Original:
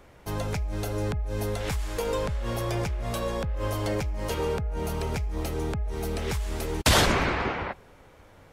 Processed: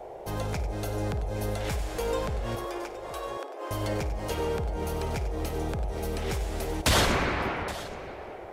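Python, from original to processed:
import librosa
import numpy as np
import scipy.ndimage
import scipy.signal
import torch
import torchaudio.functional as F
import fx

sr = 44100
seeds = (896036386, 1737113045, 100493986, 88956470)

p1 = 10.0 ** (-19.5 / 20.0) * np.tanh(x / 10.0 ** (-19.5 / 20.0))
p2 = x + F.gain(torch.from_numpy(p1), -6.5).numpy()
p3 = fx.cheby_ripple_highpass(p2, sr, hz=270.0, ripple_db=6, at=(2.55, 3.71))
p4 = fx.echo_multitap(p3, sr, ms=(54, 95, 821), db=(-15.0, -12.5, -16.0))
p5 = fx.dmg_noise_band(p4, sr, seeds[0], low_hz=350.0, high_hz=810.0, level_db=-37.0)
y = F.gain(torch.from_numpy(p5), -5.0).numpy()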